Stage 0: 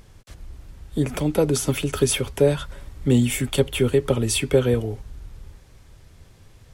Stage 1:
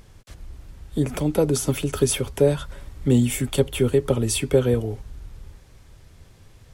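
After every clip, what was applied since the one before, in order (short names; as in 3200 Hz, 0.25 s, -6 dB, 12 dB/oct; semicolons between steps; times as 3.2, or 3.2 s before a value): dynamic EQ 2400 Hz, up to -4 dB, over -37 dBFS, Q 0.73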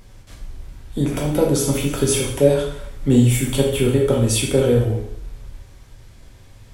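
plate-style reverb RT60 0.72 s, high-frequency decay 0.95×, DRR -2 dB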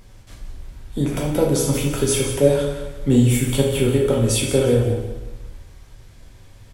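feedback echo 0.176 s, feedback 33%, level -10.5 dB; gain -1 dB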